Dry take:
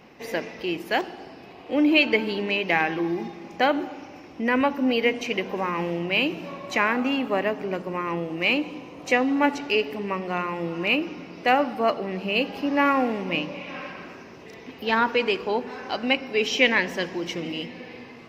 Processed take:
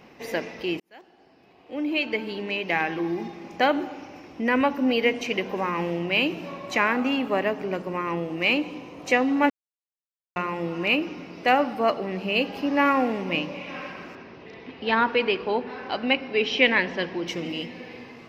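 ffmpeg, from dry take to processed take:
-filter_complex "[0:a]asettb=1/sr,asplit=3[s0][s1][s2];[s0]atrim=end=14.154[s3];[s1]atrim=start=14.15:end=17.28,asetpts=PTS-STARTPTS,afade=t=in:d=0.004:c=qsin,afade=t=out:st=3.126:d=0.004:c=qsin,lowpass=f=4500:w=0.5412,lowpass=f=4500:w=1.3066[s4];[s2]atrim=start=17.276[s5];[s3][s4]acrossfade=d=0.004:c1=hsin:c2=qsin[s6];[s6][s5]acrossfade=d=0.004:c1=qsin:c2=hsin,asplit=4[s7][s8][s9][s10];[s7]atrim=end=0.8,asetpts=PTS-STARTPTS,afade=t=out:st=0.796:d=0.004:c=hsin[s11];[s8]atrim=start=0.8:end=9.5,asetpts=PTS-STARTPTS,afade=t=in:d=2.65,afade=t=out:st=8.696:d=0.004:c=hsin[s12];[s9]atrim=start=9.5:end=10.36,asetpts=PTS-STARTPTS,volume=0[s13];[s10]atrim=start=10.36,asetpts=PTS-STARTPTS,afade=t=in:d=0.004:c=hsin[s14];[s11][s12][s13][s14]concat=n=4:v=0:a=1"

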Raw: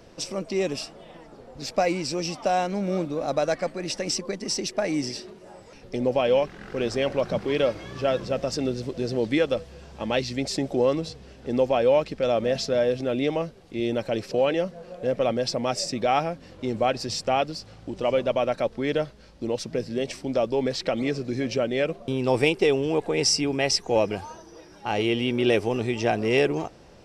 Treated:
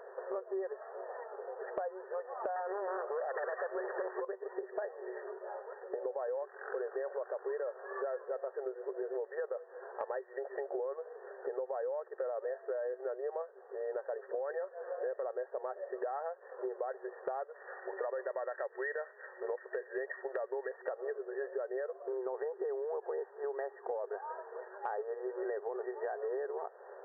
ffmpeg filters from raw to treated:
-filter_complex "[0:a]asettb=1/sr,asplit=3[s0][s1][s2];[s0]atrim=end=2.564[s3];[s1]atrim=start=2.56:end=4.25,asetpts=PTS-STARTPTS,afade=t=in:d=0.004:c=qsin,afade=t=out:st=1.686:d=0.004:c=qsin,aeval=exprs='0.251*sin(PI/2*3.55*val(0)/0.251)':c=same[s4];[s2]atrim=start=4.246[s5];[s3][s4]acrossfade=d=0.004:c1=hsin:c2=qsin[s6];[s6][s5]acrossfade=d=0.004:c1=qsin:c2=hsin,asettb=1/sr,asplit=3[s7][s8][s9];[s7]atrim=end=14.414[s10];[s8]atrim=start=14.41:end=15.23,asetpts=PTS-STARTPTS,afade=t=in:d=0.004:c=qsin,afade=t=out:st=0.816:d=0.004:c=qsin,highshelf=f=2700:t=q:w=3:g=-7[s11];[s9]atrim=start=15.226[s12];[s10][s11]acrossfade=d=0.004:c1=hsin:c2=qsin[s13];[s13][s12]acrossfade=d=0.004:c1=qsin:c2=hsin,asettb=1/sr,asplit=3[s14][s15][s16];[s14]atrim=end=17.554[s17];[s15]atrim=start=17.55:end=20.69,asetpts=PTS-STARTPTS,afade=t=in:d=0.004:c=qsin,afade=t=out:st=3.136:d=0.004:c=qsin,lowpass=f=2000:t=q:w=15[s18];[s16]atrim=start=20.686[s19];[s17][s18]acrossfade=d=0.004:c1=hsin:c2=qsin[s20];[s20][s19]acrossfade=d=0.004:c1=qsin:c2=hsin,afftfilt=real='re*between(b*sr/4096,370,1900)':imag='im*between(b*sr/4096,370,1900)':win_size=4096:overlap=0.75,alimiter=limit=0.112:level=0:latency=1:release=42,acompressor=threshold=0.01:ratio=6,volume=1.58"

